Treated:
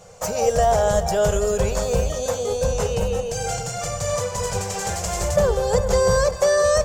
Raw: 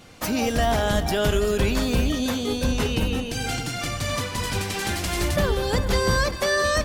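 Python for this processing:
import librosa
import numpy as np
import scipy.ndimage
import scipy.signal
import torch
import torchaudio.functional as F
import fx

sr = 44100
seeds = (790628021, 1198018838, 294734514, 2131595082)

y = fx.curve_eq(x, sr, hz=(190.0, 280.0, 480.0, 2000.0, 3800.0, 7200.0, 10000.0), db=(0, -23, 10, -6, -8, 9, -4))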